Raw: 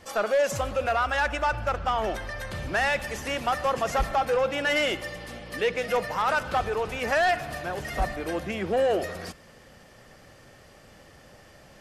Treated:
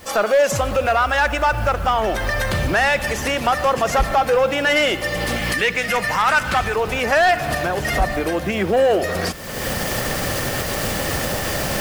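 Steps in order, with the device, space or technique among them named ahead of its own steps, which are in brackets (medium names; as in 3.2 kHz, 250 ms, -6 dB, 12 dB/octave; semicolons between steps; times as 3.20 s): 5.36–6.76 s: graphic EQ 500/2000/8000 Hz -7/+5/+5 dB; cheap recorder with automatic gain (white noise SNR 30 dB; recorder AGC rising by 39 dB/s); trim +7.5 dB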